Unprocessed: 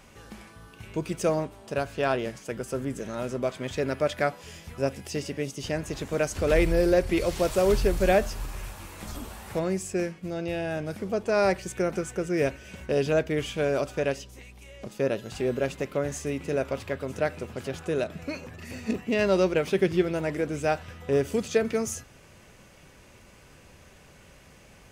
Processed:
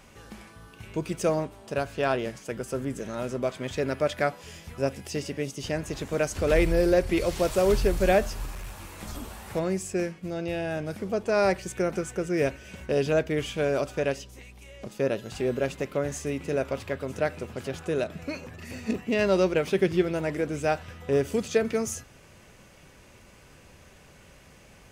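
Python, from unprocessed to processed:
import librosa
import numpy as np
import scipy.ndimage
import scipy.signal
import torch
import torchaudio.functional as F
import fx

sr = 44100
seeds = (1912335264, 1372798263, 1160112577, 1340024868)

y = fx.clip_hard(x, sr, threshold_db=-33.5, at=(8.54, 8.97))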